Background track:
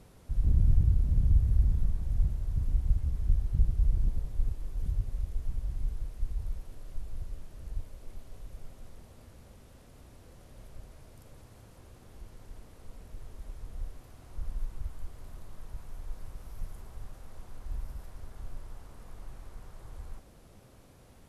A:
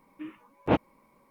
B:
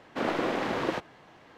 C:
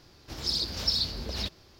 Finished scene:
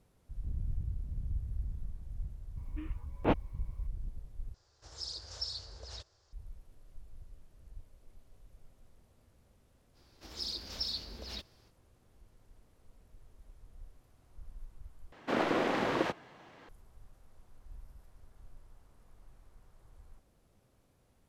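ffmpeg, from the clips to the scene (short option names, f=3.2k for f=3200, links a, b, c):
-filter_complex "[3:a]asplit=2[a][b];[0:a]volume=-13dB[c];[a]firequalizer=gain_entry='entry(100,0);entry(190,-19);entry(470,0);entry(1600,0);entry(2300,-8);entry(7300,7);entry(14000,-26)':delay=0.05:min_phase=1[d];[b]equalizer=f=120:t=o:w=0.7:g=-12[e];[c]asplit=3[f][g][h];[f]atrim=end=4.544[i];[d]atrim=end=1.79,asetpts=PTS-STARTPTS,volume=-12dB[j];[g]atrim=start=6.326:end=15.124[k];[2:a]atrim=end=1.57,asetpts=PTS-STARTPTS,volume=-1.5dB[l];[h]atrim=start=16.686[m];[1:a]atrim=end=1.3,asetpts=PTS-STARTPTS,volume=-5dB,afade=t=in:d=0.004:c=hsin,afade=t=out:st=1.296:d=0.004:c=hsin,adelay=2570[n];[e]atrim=end=1.79,asetpts=PTS-STARTPTS,volume=-9.5dB,afade=t=in:d=0.05,afade=t=out:st=1.74:d=0.05,adelay=9930[o];[i][j]acrossfade=d=0.004:c1=hsin:c2=hsin[p];[p][k]acrossfade=d=0.004:c1=hsin:c2=hsin[q];[q][l]acrossfade=d=0.004:c1=hsin:c2=hsin[r];[r][m]acrossfade=d=0.004:c1=hsin:c2=hsin[s];[s][n][o]amix=inputs=3:normalize=0"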